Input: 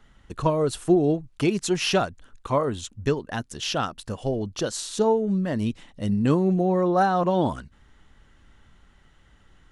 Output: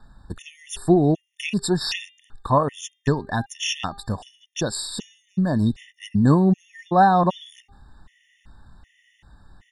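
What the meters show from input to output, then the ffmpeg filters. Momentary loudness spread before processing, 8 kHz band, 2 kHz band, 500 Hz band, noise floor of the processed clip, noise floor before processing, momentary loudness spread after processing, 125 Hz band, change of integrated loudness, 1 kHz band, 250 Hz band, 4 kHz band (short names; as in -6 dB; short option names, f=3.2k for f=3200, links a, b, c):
10 LU, +1.5 dB, +2.0 dB, -2.0 dB, -66 dBFS, -57 dBFS, 18 LU, +4.0 dB, +2.0 dB, +4.5 dB, +2.0 dB, +2.0 dB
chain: -af "aecho=1:1:1.1:0.45,bandreject=f=400.8:t=h:w=4,bandreject=f=801.6:t=h:w=4,bandreject=f=1.2024k:t=h:w=4,bandreject=f=1.6032k:t=h:w=4,bandreject=f=2.004k:t=h:w=4,bandreject=f=2.4048k:t=h:w=4,bandreject=f=2.8056k:t=h:w=4,bandreject=f=3.2064k:t=h:w=4,bandreject=f=3.6072k:t=h:w=4,bandreject=f=4.008k:t=h:w=4,bandreject=f=4.4088k:t=h:w=4,afftfilt=real='re*gt(sin(2*PI*1.3*pts/sr)*(1-2*mod(floor(b*sr/1024/1800),2)),0)':imag='im*gt(sin(2*PI*1.3*pts/sr)*(1-2*mod(floor(b*sr/1024/1800),2)),0)':win_size=1024:overlap=0.75,volume=4.5dB"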